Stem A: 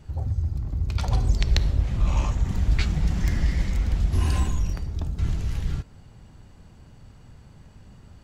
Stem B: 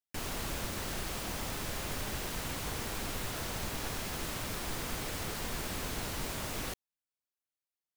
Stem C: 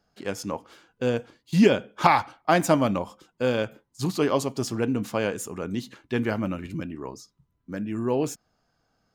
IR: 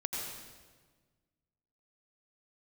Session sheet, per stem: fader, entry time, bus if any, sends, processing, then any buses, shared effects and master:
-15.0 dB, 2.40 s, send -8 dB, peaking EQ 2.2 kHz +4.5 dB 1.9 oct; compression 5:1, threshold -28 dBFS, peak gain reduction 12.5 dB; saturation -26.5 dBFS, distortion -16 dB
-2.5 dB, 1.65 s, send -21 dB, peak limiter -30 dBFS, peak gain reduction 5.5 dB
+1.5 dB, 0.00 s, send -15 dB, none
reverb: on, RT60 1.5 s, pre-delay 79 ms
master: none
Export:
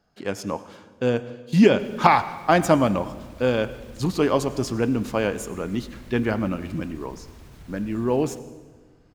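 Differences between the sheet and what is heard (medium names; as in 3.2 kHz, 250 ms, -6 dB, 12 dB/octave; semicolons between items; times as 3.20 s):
stem B -2.5 dB -> -12.5 dB; master: extra treble shelf 4.6 kHz -5 dB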